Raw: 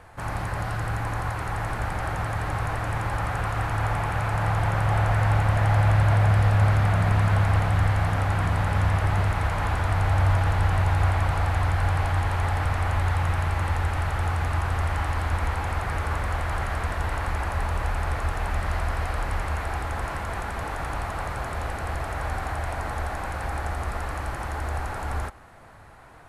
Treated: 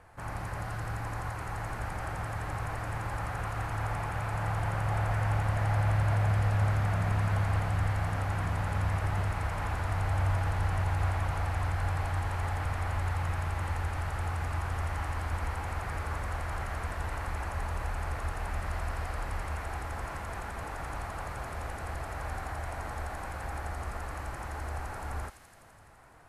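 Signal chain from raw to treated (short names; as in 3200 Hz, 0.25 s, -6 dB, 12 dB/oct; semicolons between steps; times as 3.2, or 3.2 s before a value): bell 3600 Hz -3.5 dB 0.59 oct; thin delay 84 ms, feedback 80%, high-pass 3600 Hz, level -5 dB; gain -7.5 dB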